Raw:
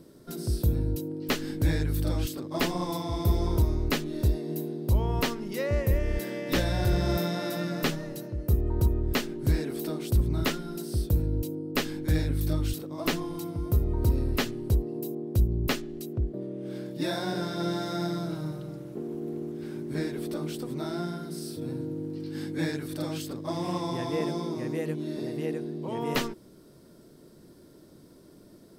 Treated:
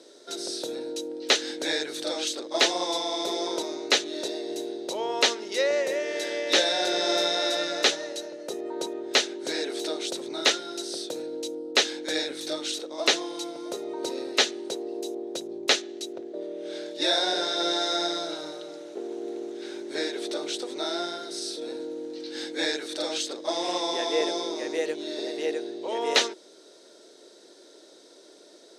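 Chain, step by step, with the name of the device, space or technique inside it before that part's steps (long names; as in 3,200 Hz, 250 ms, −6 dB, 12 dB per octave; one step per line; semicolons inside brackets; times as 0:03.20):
phone speaker on a table (loudspeaker in its box 410–8,700 Hz, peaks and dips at 1,100 Hz −8 dB, 3,800 Hz +9 dB, 6,200 Hz +7 dB)
level +7 dB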